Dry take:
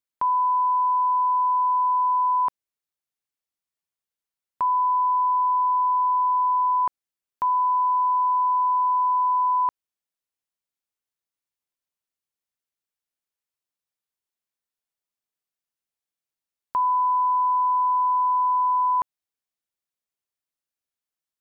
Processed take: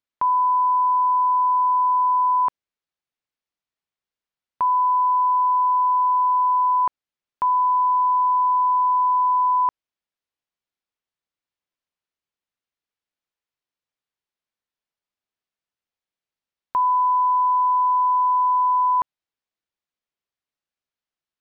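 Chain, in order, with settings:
low-pass filter 4,500 Hz
level +2.5 dB

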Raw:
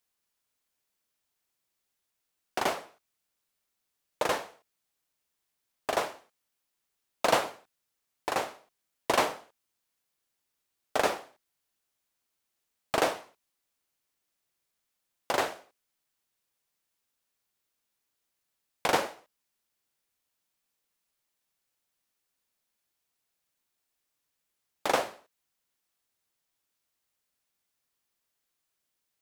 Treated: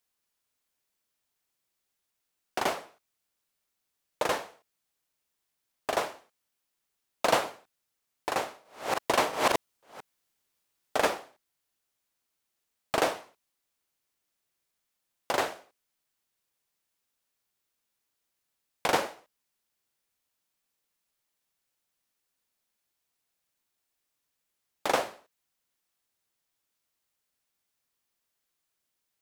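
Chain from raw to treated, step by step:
0:08.31–0:11.07: delay that plays each chunk backwards 339 ms, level 0 dB

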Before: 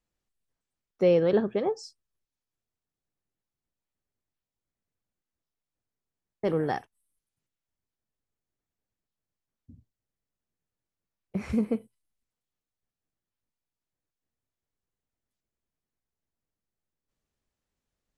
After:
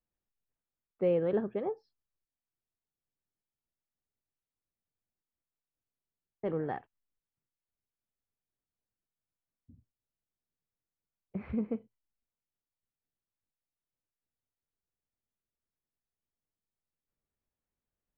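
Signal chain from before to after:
Bessel low-pass filter 2,000 Hz, order 8
level −6.5 dB

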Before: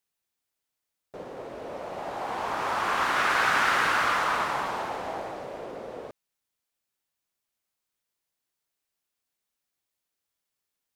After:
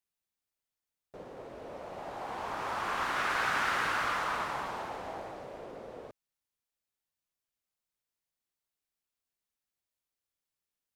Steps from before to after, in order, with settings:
low-shelf EQ 110 Hz +6.5 dB
level −7 dB

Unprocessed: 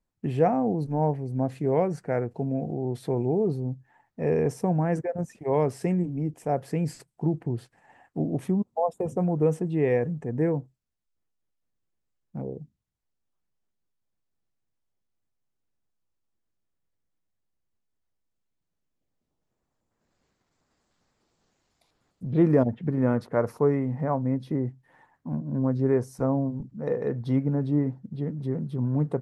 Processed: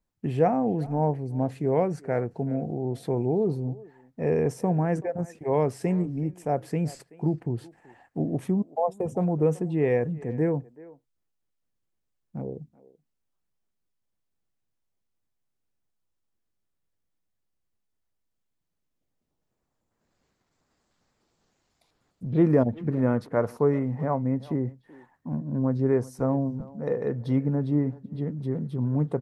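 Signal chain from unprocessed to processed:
far-end echo of a speakerphone 380 ms, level −19 dB

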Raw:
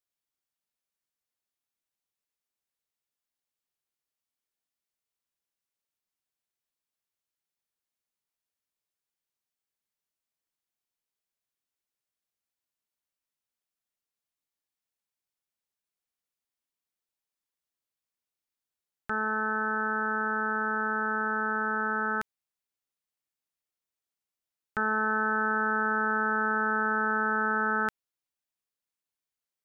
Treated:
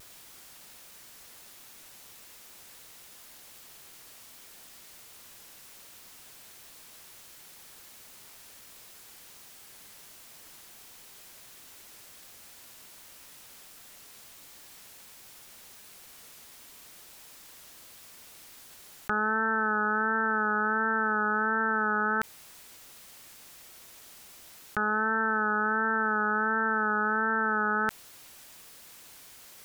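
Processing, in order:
pitch vibrato 1.4 Hz 42 cents
envelope flattener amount 100%

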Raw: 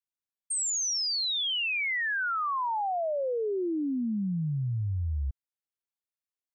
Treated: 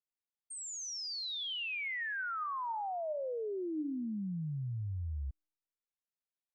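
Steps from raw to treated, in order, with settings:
high-shelf EQ 7,600 Hz −12 dB
tuned comb filter 310 Hz, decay 0.98 s, mix 60%

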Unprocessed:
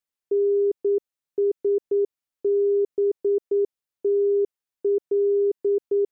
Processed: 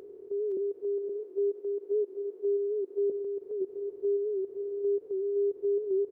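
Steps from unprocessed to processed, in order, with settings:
compressor on every frequency bin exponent 0.2
0:00.57–0:03.10: high-pass filter 280 Hz 24 dB per octave
brickwall limiter −20 dBFS, peak gain reduction 5.5 dB
multi-tap delay 511/521 ms −12.5/−7.5 dB
wow of a warped record 78 rpm, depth 100 cents
level −7.5 dB

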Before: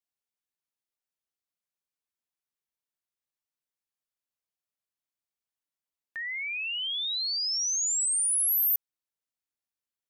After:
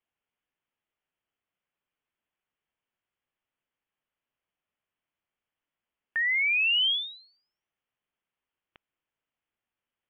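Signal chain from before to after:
Butterworth low-pass 3,300 Hz 96 dB per octave
level +8.5 dB

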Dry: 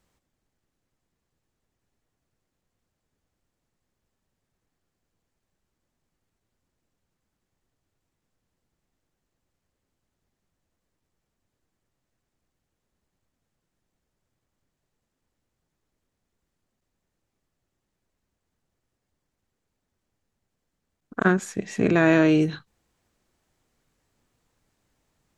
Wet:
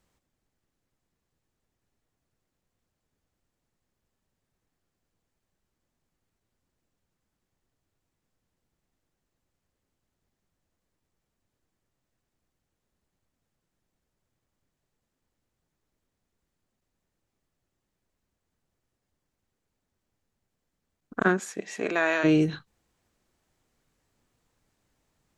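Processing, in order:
0:21.24–0:22.23: high-pass filter 200 Hz → 830 Hz 12 dB per octave
level −1.5 dB

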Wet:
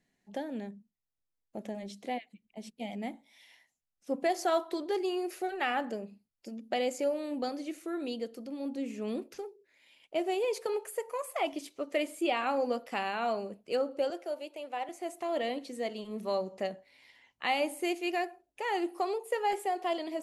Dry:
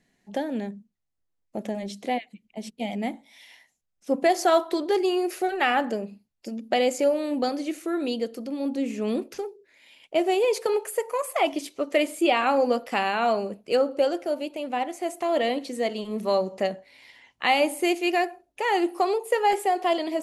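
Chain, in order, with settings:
0:14.10–0:14.89: high-pass filter 350 Hz 24 dB per octave
level −8.5 dB
AAC 128 kbit/s 44,100 Hz

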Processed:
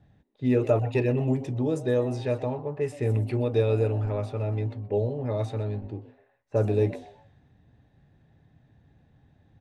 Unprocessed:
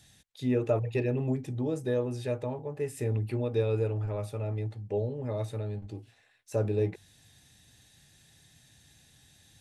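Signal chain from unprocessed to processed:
echo with shifted repeats 125 ms, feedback 33%, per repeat +150 Hz, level −18 dB
low-pass that shuts in the quiet parts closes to 850 Hz, open at −25.5 dBFS
level +4.5 dB

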